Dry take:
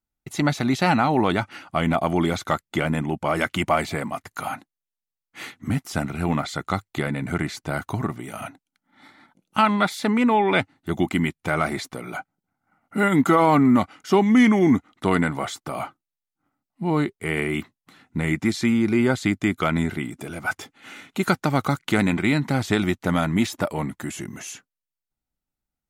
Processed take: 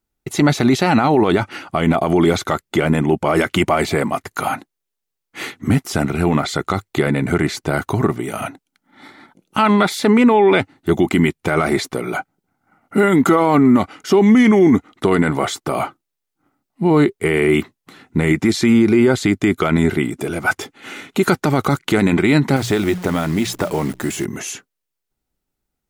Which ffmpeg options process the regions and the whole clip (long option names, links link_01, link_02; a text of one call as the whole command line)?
ffmpeg -i in.wav -filter_complex "[0:a]asettb=1/sr,asplit=3[link_01][link_02][link_03];[link_01]atrim=end=22.564[link_04];[link_02]atrim=start=22.56:end=24.25,asetpts=PTS-STARTPTS,afade=type=in:duration=0.004:curve=qsin,afade=type=out:start_time=1.686:duration=0.004:curve=qsin,bandreject=frequency=60:width_type=h:width=6,bandreject=frequency=120:width_type=h:width=6,bandreject=frequency=180:width_type=h:width=6,acompressor=threshold=-25dB:ratio=3:attack=3.2:release=140:knee=1:detection=peak,acrusher=bits=8:dc=4:mix=0:aa=0.000001[link_05];[link_03]atrim=start=24.246[link_06];[link_04][link_05]acrossfade=duration=0.004:curve1=hsin:curve2=qsin[link_07];[link_07][link_06]acrossfade=duration=0.004:curve1=qsin:curve2=hsin,equalizer=frequency=400:width=2.6:gain=7.5,alimiter=limit=-13dB:level=0:latency=1:release=36,volume=8dB" out.wav